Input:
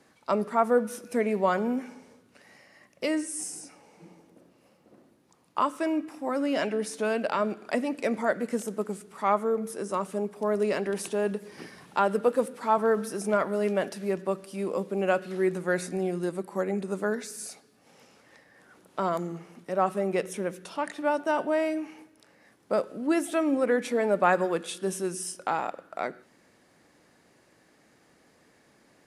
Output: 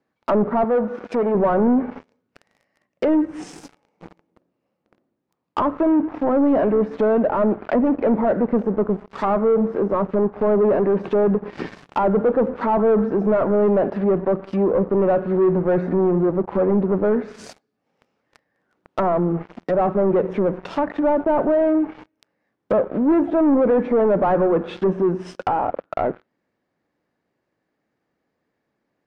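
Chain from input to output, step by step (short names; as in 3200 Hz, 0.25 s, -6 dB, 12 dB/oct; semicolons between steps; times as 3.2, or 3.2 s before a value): LPF 5500 Hz 12 dB/oct; sample leveller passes 5; high shelf 2500 Hz -9 dB; treble ducked by the level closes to 1000 Hz, closed at -15 dBFS; 0.64–1.35 low shelf 210 Hz -11.5 dB; gain -2.5 dB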